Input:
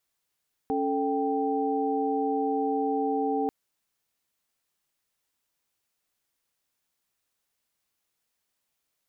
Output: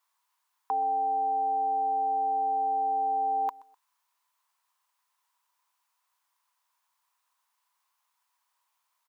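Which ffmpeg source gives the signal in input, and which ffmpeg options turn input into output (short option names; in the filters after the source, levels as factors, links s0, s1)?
-f lavfi -i "aevalsrc='0.0376*(sin(2*PI*277.18*t)+sin(2*PI*440*t)+sin(2*PI*783.99*t))':d=2.79:s=44100"
-af "highpass=f=990:t=q:w=7.7,aecho=1:1:126|252:0.0708|0.0241"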